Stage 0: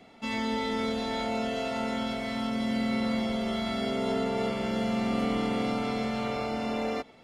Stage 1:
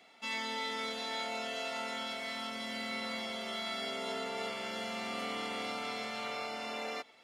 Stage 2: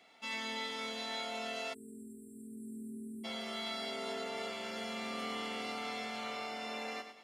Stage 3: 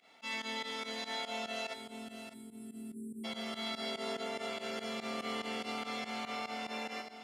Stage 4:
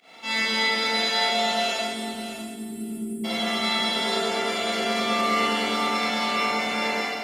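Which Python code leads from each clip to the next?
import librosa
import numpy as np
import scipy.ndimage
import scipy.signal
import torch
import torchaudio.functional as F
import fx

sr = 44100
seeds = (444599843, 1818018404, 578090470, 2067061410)

y1 = fx.highpass(x, sr, hz=1500.0, slope=6)
y2 = fx.echo_feedback(y1, sr, ms=104, feedback_pct=37, wet_db=-9)
y2 = fx.spec_erase(y2, sr, start_s=1.73, length_s=1.51, low_hz=450.0, high_hz=7500.0)
y2 = y2 * librosa.db_to_amplitude(-2.5)
y3 = fx.echo_feedback(y2, sr, ms=600, feedback_pct=17, wet_db=-10.5)
y3 = fx.volume_shaper(y3, sr, bpm=144, per_beat=2, depth_db=-17, release_ms=80.0, shape='fast start')
y3 = y3 * librosa.db_to_amplitude(1.0)
y4 = fx.rev_schroeder(y3, sr, rt60_s=1.2, comb_ms=33, drr_db=-7.0)
y4 = y4 * librosa.db_to_amplitude(8.5)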